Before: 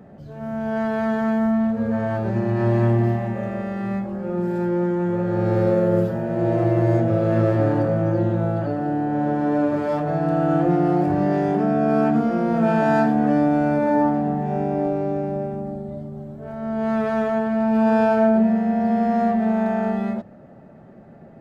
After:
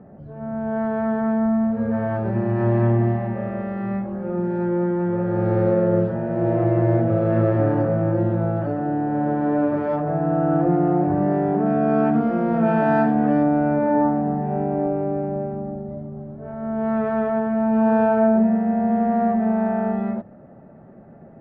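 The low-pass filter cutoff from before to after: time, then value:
1,400 Hz
from 0:01.72 2,100 Hz
from 0:09.96 1,500 Hz
from 0:11.66 2,400 Hz
from 0:13.43 1,700 Hz

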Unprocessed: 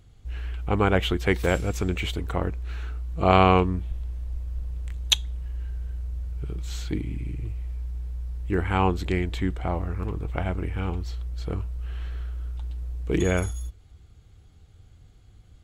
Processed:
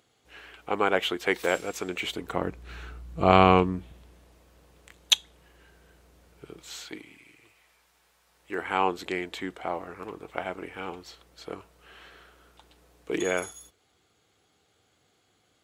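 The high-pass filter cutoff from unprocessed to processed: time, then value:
0:01.85 390 Hz
0:02.78 110 Hz
0:03.50 110 Hz
0:04.39 340 Hz
0:06.54 340 Hz
0:07.26 910 Hz
0:08.23 910 Hz
0:08.72 390 Hz

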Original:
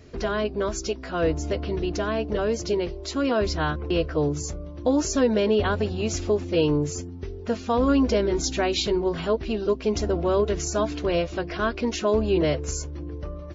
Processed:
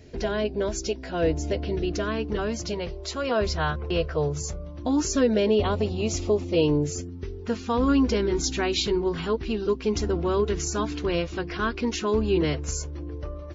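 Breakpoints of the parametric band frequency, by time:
parametric band −13 dB 0.33 octaves
0:01.69 1,200 Hz
0:02.96 290 Hz
0:04.56 290 Hz
0:05.61 1,600 Hz
0:06.55 1,600 Hz
0:07.33 620 Hz
0:12.52 620 Hz
0:12.93 190 Hz

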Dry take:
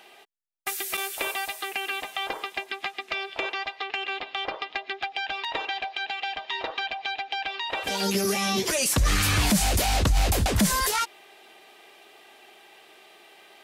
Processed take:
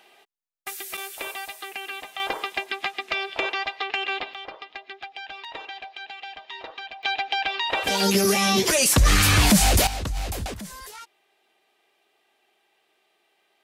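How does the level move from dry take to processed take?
−4 dB
from 0:02.20 +3.5 dB
from 0:04.34 −7 dB
from 0:07.03 +5 dB
from 0:09.87 −7 dB
from 0:10.54 −16 dB

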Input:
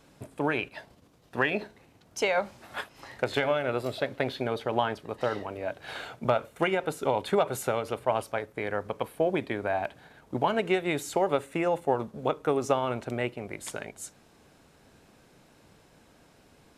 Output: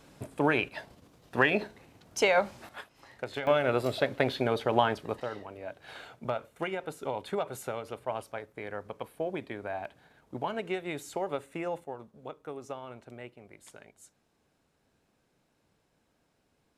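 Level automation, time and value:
+2 dB
from 0:02.69 −8.5 dB
from 0:03.47 +2 dB
from 0:05.20 −7.5 dB
from 0:11.84 −14.5 dB

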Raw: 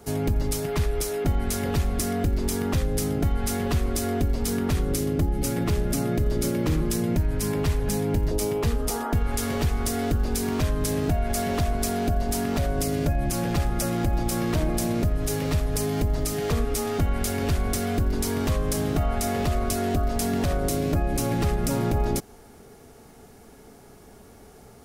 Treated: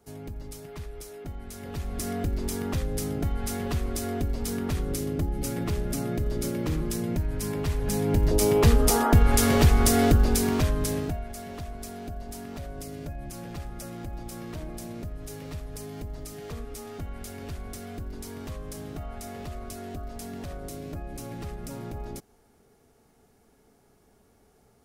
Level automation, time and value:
0:01.53 −14.5 dB
0:02.09 −4.5 dB
0:07.65 −4.5 dB
0:08.63 +6 dB
0:10.04 +6 dB
0:10.97 −3 dB
0:11.32 −13 dB

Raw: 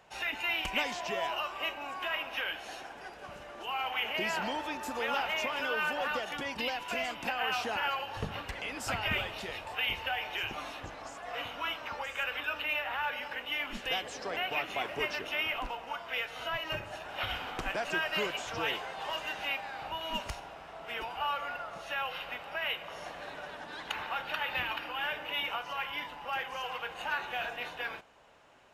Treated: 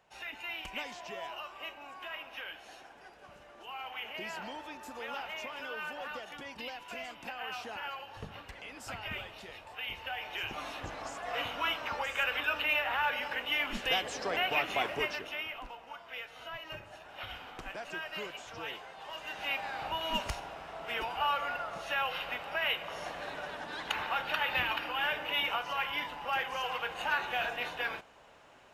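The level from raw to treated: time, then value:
0:09.79 −8 dB
0:10.96 +3 dB
0:14.85 +3 dB
0:15.53 −8 dB
0:19.09 −8 dB
0:19.65 +2.5 dB

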